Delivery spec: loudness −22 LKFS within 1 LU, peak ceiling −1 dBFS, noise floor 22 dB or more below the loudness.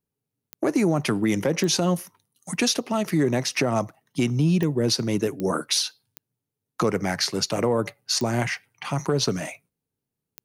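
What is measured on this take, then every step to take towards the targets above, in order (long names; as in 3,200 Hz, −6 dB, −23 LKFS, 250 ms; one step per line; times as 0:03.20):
number of clicks 7; integrated loudness −24.5 LKFS; sample peak −10.0 dBFS; target loudness −22.0 LKFS
→ click removal
level +2.5 dB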